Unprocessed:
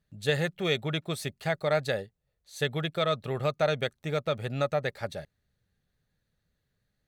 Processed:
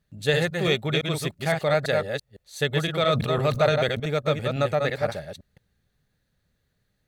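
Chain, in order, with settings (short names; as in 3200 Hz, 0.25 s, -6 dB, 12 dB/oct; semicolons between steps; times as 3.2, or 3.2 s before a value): reverse delay 0.169 s, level -4 dB; 3.05–4 sustainer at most 55 dB/s; gain +4 dB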